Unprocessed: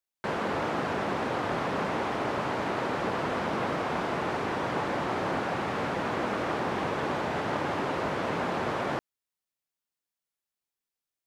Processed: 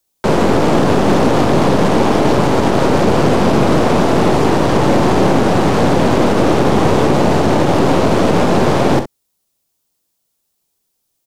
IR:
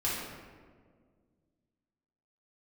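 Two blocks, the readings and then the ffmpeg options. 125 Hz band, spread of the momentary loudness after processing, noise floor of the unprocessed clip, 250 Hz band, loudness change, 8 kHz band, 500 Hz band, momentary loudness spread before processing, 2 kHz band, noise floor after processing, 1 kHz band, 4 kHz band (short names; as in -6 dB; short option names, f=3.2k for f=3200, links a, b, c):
+21.5 dB, 1 LU, under -85 dBFS, +20.5 dB, +17.0 dB, +20.5 dB, +18.0 dB, 1 LU, +10.5 dB, -69 dBFS, +14.0 dB, +16.0 dB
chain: -filter_complex "[0:a]equalizer=f=1.8k:t=o:w=1.9:g=-11,aeval=exprs='0.133*(cos(1*acos(clip(val(0)/0.133,-1,1)))-cos(1*PI/2))+0.0119*(cos(8*acos(clip(val(0)/0.133,-1,1)))-cos(8*PI/2))':c=same,acrossover=split=190|450|4900[a][b][c][d];[c]asoftclip=type=tanh:threshold=-34.5dB[e];[a][b][e][d]amix=inputs=4:normalize=0,aecho=1:1:43|64:0.237|0.266,alimiter=level_in=23dB:limit=-1dB:release=50:level=0:latency=1,volume=-1.5dB"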